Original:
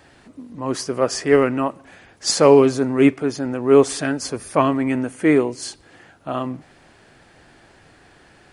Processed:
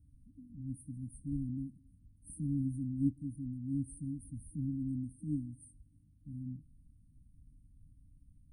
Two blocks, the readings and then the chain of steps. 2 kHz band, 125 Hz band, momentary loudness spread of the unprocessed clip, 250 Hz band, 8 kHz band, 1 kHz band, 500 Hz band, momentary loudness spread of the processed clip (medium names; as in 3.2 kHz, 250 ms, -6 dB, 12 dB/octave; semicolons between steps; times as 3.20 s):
under -40 dB, -8.5 dB, 15 LU, -17.5 dB, -27.0 dB, under -40 dB, under -40 dB, 17 LU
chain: amplifier tone stack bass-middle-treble 10-0-1; FFT band-reject 310–8400 Hz; bass shelf 95 Hz +9.5 dB; trim +1 dB